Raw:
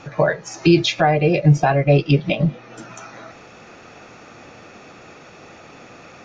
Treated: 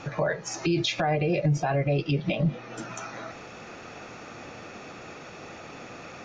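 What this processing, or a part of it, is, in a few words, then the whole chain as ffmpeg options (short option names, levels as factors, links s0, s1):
stacked limiters: -af "alimiter=limit=0.299:level=0:latency=1:release=278,alimiter=limit=0.141:level=0:latency=1:release=54"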